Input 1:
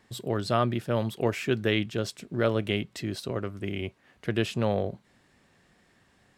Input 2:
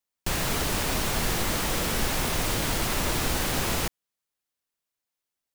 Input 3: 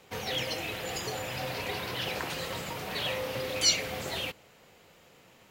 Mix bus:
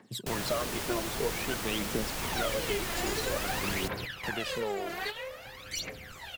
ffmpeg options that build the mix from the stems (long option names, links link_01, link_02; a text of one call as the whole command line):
ffmpeg -i stem1.wav -i stem2.wav -i stem3.wav -filter_complex "[0:a]highpass=frequency=150:width=0.5412,highpass=frequency=150:width=1.3066,volume=-2.5dB,asplit=2[link_01][link_02];[1:a]highpass=frequency=65:poles=1,volume=-8dB[link_03];[2:a]equalizer=frequency=1600:width=1.6:gain=6.5,aeval=exprs='0.15*(abs(mod(val(0)/0.15+3,4)-2)-1)':channel_layout=same,adelay=2100,volume=-4.5dB[link_04];[link_02]apad=whole_len=335205[link_05];[link_04][link_05]sidechaingate=range=-10dB:threshold=-58dB:ratio=16:detection=peak[link_06];[link_01][link_06]amix=inputs=2:normalize=0,aphaser=in_gain=1:out_gain=1:delay=3:decay=0.76:speed=0.51:type=triangular,acompressor=threshold=-30dB:ratio=5,volume=0dB[link_07];[link_03][link_07]amix=inputs=2:normalize=0,asubboost=boost=3:cutoff=55" out.wav